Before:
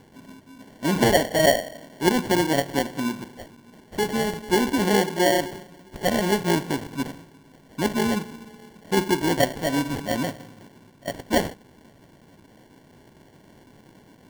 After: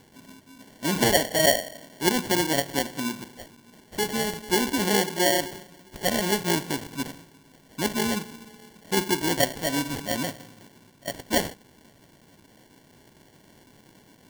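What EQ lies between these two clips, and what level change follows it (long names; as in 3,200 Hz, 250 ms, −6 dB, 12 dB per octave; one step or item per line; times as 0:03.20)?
high-shelf EQ 2,400 Hz +8.5 dB
−4.0 dB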